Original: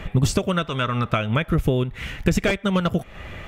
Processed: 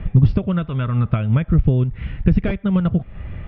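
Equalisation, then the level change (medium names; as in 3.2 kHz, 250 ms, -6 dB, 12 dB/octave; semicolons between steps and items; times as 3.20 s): Chebyshev low-pass 5.3 kHz, order 5; distance through air 200 m; tone controls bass +13 dB, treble -10 dB; -4.5 dB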